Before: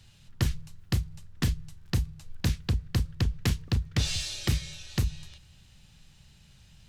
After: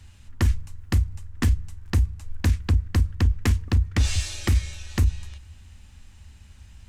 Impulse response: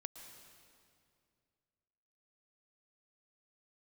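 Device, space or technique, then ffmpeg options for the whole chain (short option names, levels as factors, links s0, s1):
car stereo with a boomy subwoofer: -af "lowshelf=f=110:t=q:w=3:g=8.5,alimiter=limit=0.251:level=0:latency=1:release=25,equalizer=f=125:t=o:w=1:g=-3,equalizer=f=250:t=o:w=1:g=11,equalizer=f=1000:t=o:w=1:g=6,equalizer=f=2000:t=o:w=1:g=5,equalizer=f=4000:t=o:w=1:g=-4,equalizer=f=8000:t=o:w=1:g=5"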